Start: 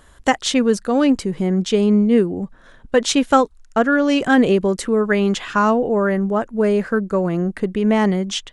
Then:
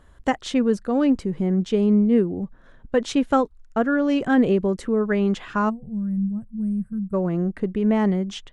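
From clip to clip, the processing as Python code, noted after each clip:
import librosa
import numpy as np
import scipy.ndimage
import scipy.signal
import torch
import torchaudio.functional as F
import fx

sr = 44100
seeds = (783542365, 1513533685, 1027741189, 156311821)

y = fx.high_shelf(x, sr, hz=3500.0, db=-9.0)
y = fx.spec_box(y, sr, start_s=5.69, length_s=1.44, low_hz=230.0, high_hz=7700.0, gain_db=-29)
y = fx.low_shelf(y, sr, hz=340.0, db=5.5)
y = F.gain(torch.from_numpy(y), -6.5).numpy()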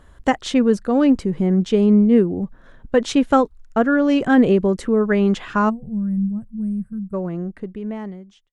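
y = fx.fade_out_tail(x, sr, length_s=2.64)
y = F.gain(torch.from_numpy(y), 4.0).numpy()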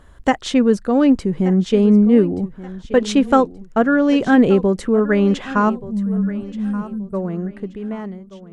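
y = fx.echo_feedback(x, sr, ms=1178, feedback_pct=31, wet_db=-16.5)
y = F.gain(torch.from_numpy(y), 1.5).numpy()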